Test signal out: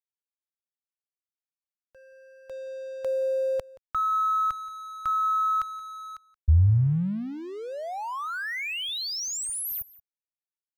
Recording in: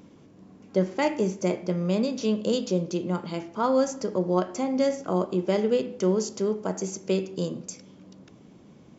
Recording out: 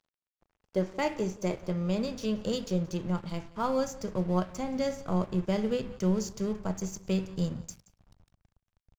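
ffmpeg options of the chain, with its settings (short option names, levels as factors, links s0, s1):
-af "aeval=exprs='sgn(val(0))*max(abs(val(0))-0.00631,0)':c=same,asubboost=boost=11:cutoff=100,aecho=1:1:176:0.0891,volume=0.668"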